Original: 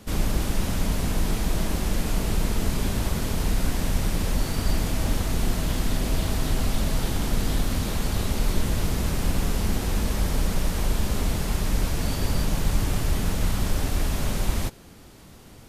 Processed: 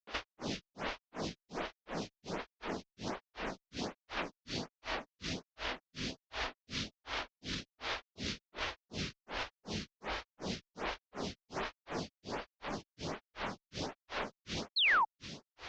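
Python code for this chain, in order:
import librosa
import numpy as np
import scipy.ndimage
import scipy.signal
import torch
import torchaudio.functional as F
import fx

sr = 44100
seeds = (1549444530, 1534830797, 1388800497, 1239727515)

y = fx.cvsd(x, sr, bps=32000)
y = fx.highpass(y, sr, hz=460.0, slope=6)
y = fx.echo_feedback(y, sr, ms=551, feedback_pct=40, wet_db=-12.0)
y = fx.over_compress(y, sr, threshold_db=-38.0, ratio=-1.0)
y = fx.granulator(y, sr, seeds[0], grain_ms=249.0, per_s=2.7, spray_ms=100.0, spread_st=0)
y = fx.dynamic_eq(y, sr, hz=2700.0, q=0.72, threshold_db=-58.0, ratio=4.0, max_db=3)
y = fx.spec_paint(y, sr, seeds[1], shape='fall', start_s=14.76, length_s=0.29, low_hz=820.0, high_hz=4500.0, level_db=-31.0)
y = fx.stagger_phaser(y, sr, hz=1.3)
y = y * librosa.db_to_amplitude(4.0)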